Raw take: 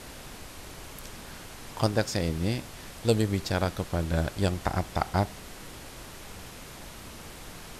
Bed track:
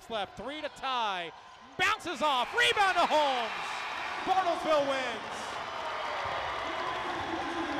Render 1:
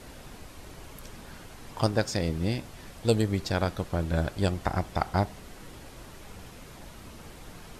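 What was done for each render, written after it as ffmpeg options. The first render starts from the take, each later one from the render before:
-af "afftdn=nr=6:nf=-45"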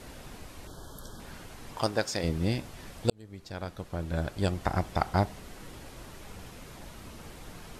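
-filter_complex "[0:a]asettb=1/sr,asplit=3[s0][s1][s2];[s0]atrim=end=0.674[s3];[s1]atrim=start=0.67:end=1.2,asetpts=PTS-STARTPTS,afade=t=in:d=0.004:c=qsin,afade=t=out:st=0.526:d=0.004:c=qsin,asuperstop=centerf=2300:order=20:qfactor=1.7[s4];[s2]atrim=start=1.196[s5];[s3][s4]acrossfade=d=0.004:c1=hsin:c2=qsin[s6];[s6][s5]acrossfade=d=0.004:c1=qsin:c2=hsin,asettb=1/sr,asplit=3[s7][s8][s9];[s7]atrim=end=1.774[s10];[s8]atrim=start=1.77:end=2.24,asetpts=PTS-STARTPTS,afade=t=in:d=0.004:c=qsin,afade=t=out:st=0.466:d=0.004:c=qsin,lowshelf=f=220:g=-11.5[s11];[s9]atrim=start=2.236[s12];[s10][s11]acrossfade=d=0.004:c1=hsin:c2=qsin[s13];[s13][s12]acrossfade=d=0.004:c1=qsin:c2=hsin,asplit=2[s14][s15];[s14]atrim=end=3.1,asetpts=PTS-STARTPTS,afade=t=out:st=3.096:d=0.004:c=hsin[s16];[s15]atrim=start=3.1,asetpts=PTS-STARTPTS,afade=t=in:d=1.69[s17];[s16][s17]concat=n=2:v=0:a=1"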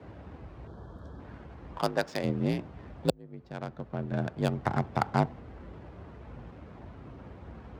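-af "adynamicsmooth=sensitivity=4:basefreq=1300,afreqshift=47"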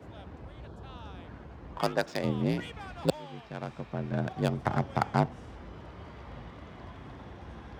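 -filter_complex "[1:a]volume=0.106[s0];[0:a][s0]amix=inputs=2:normalize=0"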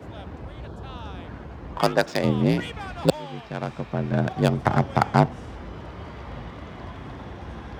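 -af "volume=2.51,alimiter=limit=0.794:level=0:latency=1"

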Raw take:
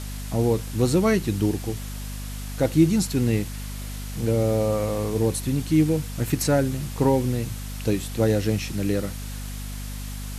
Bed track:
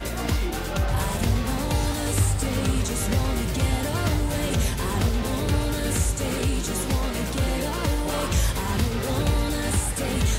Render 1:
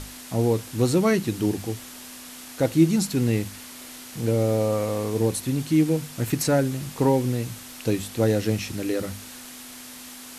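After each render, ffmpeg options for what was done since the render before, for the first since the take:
-af "bandreject=f=50:t=h:w=6,bandreject=f=100:t=h:w=6,bandreject=f=150:t=h:w=6,bandreject=f=200:t=h:w=6"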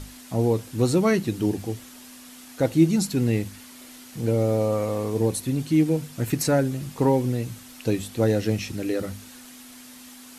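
-af "afftdn=nr=6:nf=-42"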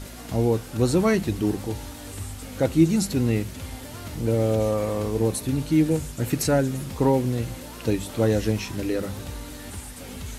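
-filter_complex "[1:a]volume=0.211[s0];[0:a][s0]amix=inputs=2:normalize=0"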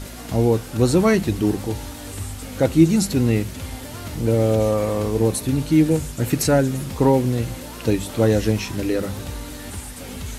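-af "volume=1.58"

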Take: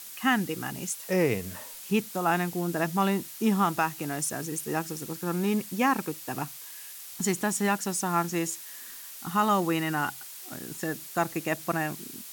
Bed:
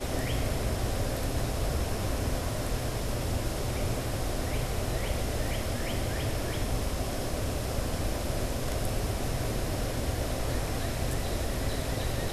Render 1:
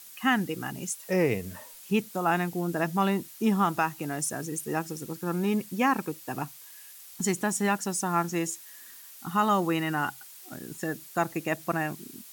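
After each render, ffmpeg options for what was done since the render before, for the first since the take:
-af "afftdn=nr=6:nf=-43"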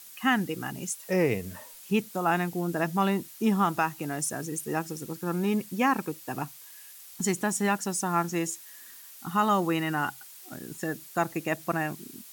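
-af anull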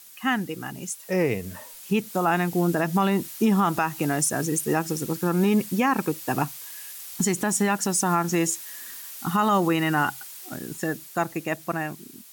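-af "dynaudnorm=f=230:g=17:m=2.82,alimiter=limit=0.237:level=0:latency=1:release=120"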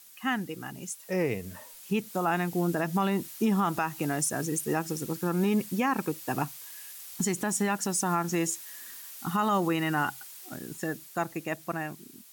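-af "volume=0.562"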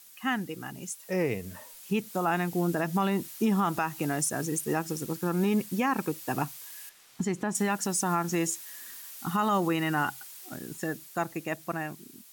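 -filter_complex "[0:a]asettb=1/sr,asplit=3[s0][s1][s2];[s0]atrim=end=4.224[s3];[s1]atrim=start=4.22:end=5.89,asetpts=PTS-STARTPTS,afade=t=in:d=0.004:c=qsin,afade=t=out:st=1.666:d=0.004:c=qsin,aeval=exprs='sgn(val(0))*max(abs(val(0))-0.00126,0)':c=same[s4];[s2]atrim=start=5.886[s5];[s3][s4]acrossfade=d=0.004:c1=hsin:c2=qsin[s6];[s6][s5]acrossfade=d=0.004:c1=qsin:c2=hsin,asettb=1/sr,asplit=3[s7][s8][s9];[s7]atrim=end=6.894[s10];[s8]atrim=start=6.89:end=7.55,asetpts=PTS-STARTPTS,afade=t=in:d=0.004:c=qsin,afade=t=out:st=0.656:d=0.004:c=qsin,aemphasis=mode=reproduction:type=75kf[s11];[s9]atrim=start=7.546[s12];[s10][s11]acrossfade=d=0.004:c1=hsin:c2=qsin[s13];[s13][s12]acrossfade=d=0.004:c1=qsin:c2=hsin"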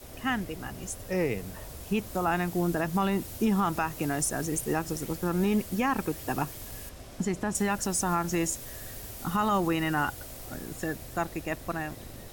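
-filter_complex "[1:a]volume=0.188[s0];[0:a][s0]amix=inputs=2:normalize=0"

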